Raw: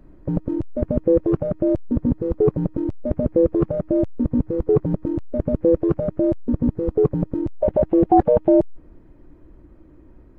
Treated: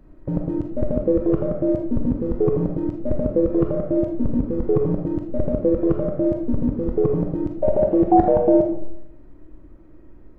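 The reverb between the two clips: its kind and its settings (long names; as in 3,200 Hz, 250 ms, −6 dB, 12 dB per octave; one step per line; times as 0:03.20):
comb and all-pass reverb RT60 0.76 s, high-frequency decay 0.6×, pre-delay 0 ms, DRR 2 dB
level −2 dB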